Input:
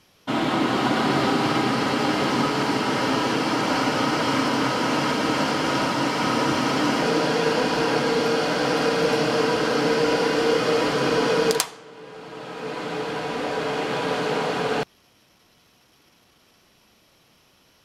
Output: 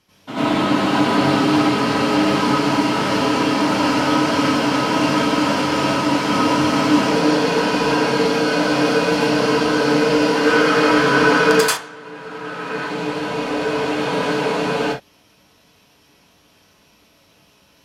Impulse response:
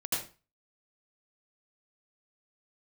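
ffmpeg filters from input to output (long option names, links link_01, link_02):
-filter_complex "[0:a]asettb=1/sr,asplit=3[link_01][link_02][link_03];[link_01]atrim=end=10.354[link_04];[link_02]atrim=start=10.35:end=12.77,asetpts=PTS-STARTPTS,afade=type=in:duration=0.004:curve=qsin,afade=type=out:start_time=2.416:duration=0.004:curve=qsin,equalizer=frequency=1500:width=1.5:gain=8.5[link_05];[link_03]atrim=start=12.766[link_06];[link_04][link_05]acrossfade=duration=0.004:curve1=hsin:curve2=qsin[link_07];[link_07][link_06]acrossfade=duration=0.004:curve1=qsin:curve2=hsin[link_08];[1:a]atrim=start_sample=2205,atrim=end_sample=6615,asetrate=39249,aresample=44100[link_09];[link_08][link_09]afir=irnorm=-1:irlink=0,volume=-2.5dB"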